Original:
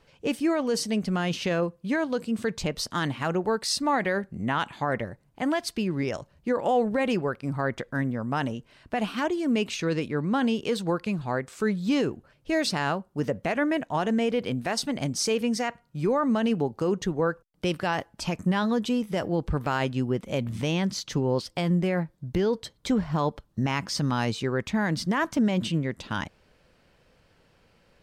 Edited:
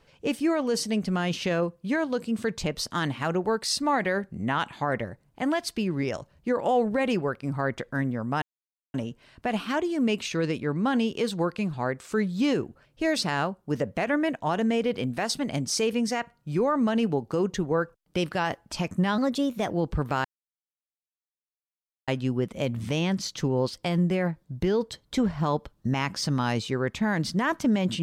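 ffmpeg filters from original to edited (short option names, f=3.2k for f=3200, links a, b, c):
-filter_complex "[0:a]asplit=5[a][b][c][d][e];[a]atrim=end=8.42,asetpts=PTS-STARTPTS,afade=t=out:st=8.416:d=0.004:c=hsin,apad=pad_dur=0.52[f];[b]atrim=start=8.42:end=18.664,asetpts=PTS-STARTPTS,afade=t=in:d=0.004:c=hsin[g];[c]atrim=start=18.66:end=19.26,asetpts=PTS-STARTPTS,asetrate=50274,aresample=44100[h];[d]atrim=start=19.256:end=19.8,asetpts=PTS-STARTPTS,afade=t=out:st=0.54:d=0.004:c=hsin,apad=pad_dur=1.83[i];[e]atrim=start=19.8,asetpts=PTS-STARTPTS,afade=t=in:d=0.004:c=hsin[j];[f][g]concat=n=2:v=0:a=1[k];[k][h]acrossfade=d=0.004:c1=hsin:c2=hsin[l];[i][j]concat=n=2:v=0:a=1[m];[l][m]acrossfade=d=0.004:c1=hsin:c2=hsin"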